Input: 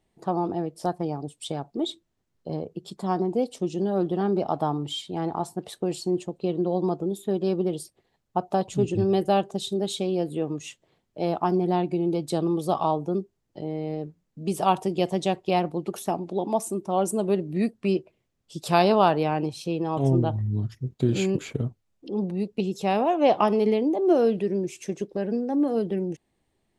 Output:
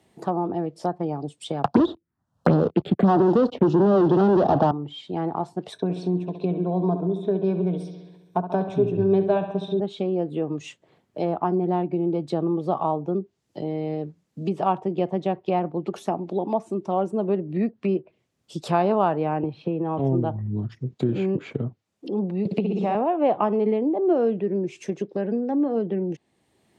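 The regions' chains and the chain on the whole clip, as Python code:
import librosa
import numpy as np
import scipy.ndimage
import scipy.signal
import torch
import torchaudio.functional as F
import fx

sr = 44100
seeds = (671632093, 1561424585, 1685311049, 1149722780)

y = fx.chain(x, sr, fx.leveller(passes=5),
    fx.env_phaser(low_hz=330.0, high_hz=2200.0, full_db=-15.5),
    fx.band_squash(depth_pct=100), at=(1.64, 4.71))
y = fx.chain(y, sr, fx.ripple_eq(per_octave=1.6, db=12),
    fx.echo_bbd(ms=67, stages=2048, feedback_pct=61, wet_db=-10.5), at=(5.72, 9.8))
y = fx.chain(y, sr, fx.air_absorb(metres=480.0),
    fx.band_squash(depth_pct=100), at=(19.43, 19.99))
y = fx.chain(y, sr, fx.notch(hz=370.0, q=12.0),
    fx.room_flutter(wall_m=10.4, rt60_s=1.3),
    fx.band_squash(depth_pct=100), at=(22.45, 22.95))
y = fx.env_lowpass_down(y, sr, base_hz=1700.0, full_db=-22.0)
y = scipy.signal.sosfilt(scipy.signal.butter(2, 100.0, 'highpass', fs=sr, output='sos'), y)
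y = fx.band_squash(y, sr, depth_pct=40)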